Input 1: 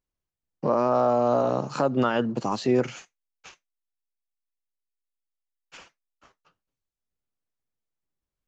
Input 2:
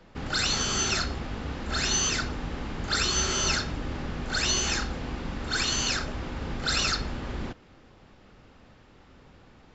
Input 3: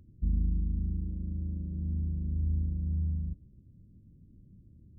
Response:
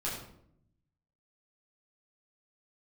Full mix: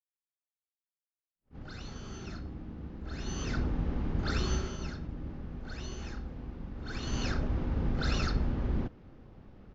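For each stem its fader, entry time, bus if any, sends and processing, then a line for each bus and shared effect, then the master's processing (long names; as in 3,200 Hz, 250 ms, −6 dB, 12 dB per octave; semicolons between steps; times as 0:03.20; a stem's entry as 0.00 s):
muted
0:03.03 −18.5 dB → 0:03.59 −7 dB → 0:04.50 −7 dB → 0:04.78 −16.5 dB → 0:06.74 −16.5 dB → 0:07.26 −6 dB, 1.35 s, no send, Butterworth low-pass 6,800 Hz 72 dB per octave; low-shelf EQ 430 Hz +10.5 dB
−9.0 dB, 2.00 s, no send, ceiling on every frequency bin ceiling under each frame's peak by 26 dB; downward compressor, threshold −34 dBFS, peak gain reduction 10.5 dB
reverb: not used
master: high-shelf EQ 2,500 Hz −9.5 dB; level that may rise only so fast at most 340 dB per second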